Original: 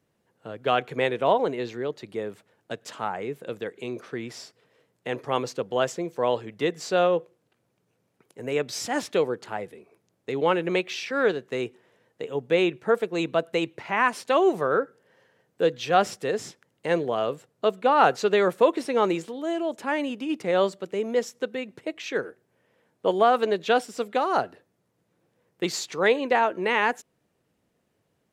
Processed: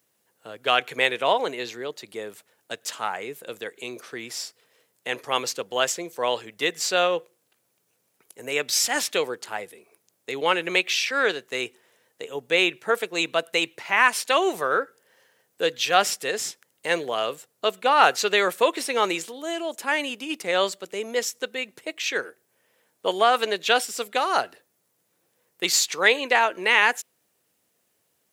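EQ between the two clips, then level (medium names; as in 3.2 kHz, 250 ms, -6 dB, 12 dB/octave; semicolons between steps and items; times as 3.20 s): RIAA curve recording; dynamic bell 2.4 kHz, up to +5 dB, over -37 dBFS, Q 0.74; peaking EQ 77 Hz +5 dB 1 oct; 0.0 dB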